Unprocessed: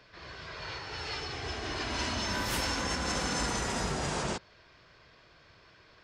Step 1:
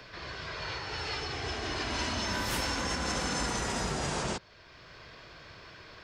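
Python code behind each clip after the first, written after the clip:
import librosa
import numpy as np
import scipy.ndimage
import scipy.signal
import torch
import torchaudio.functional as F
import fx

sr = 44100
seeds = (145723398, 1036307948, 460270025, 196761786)

y = fx.band_squash(x, sr, depth_pct=40)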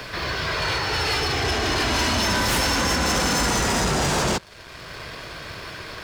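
y = fx.leveller(x, sr, passes=3)
y = F.gain(torch.from_numpy(y), 3.5).numpy()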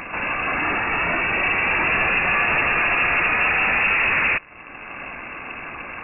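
y = fx.freq_invert(x, sr, carrier_hz=2700)
y = F.gain(torch.from_numpy(y), 3.0).numpy()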